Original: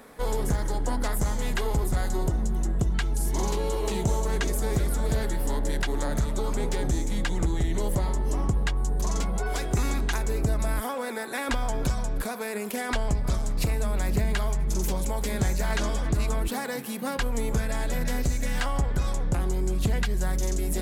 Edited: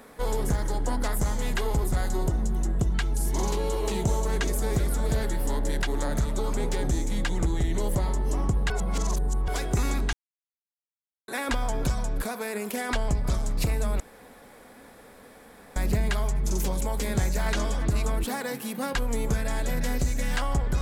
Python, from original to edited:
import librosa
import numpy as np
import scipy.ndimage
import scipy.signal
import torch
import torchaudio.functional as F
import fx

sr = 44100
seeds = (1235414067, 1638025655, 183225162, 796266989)

y = fx.edit(x, sr, fx.reverse_span(start_s=8.7, length_s=0.78),
    fx.silence(start_s=10.13, length_s=1.15),
    fx.insert_room_tone(at_s=14.0, length_s=1.76), tone=tone)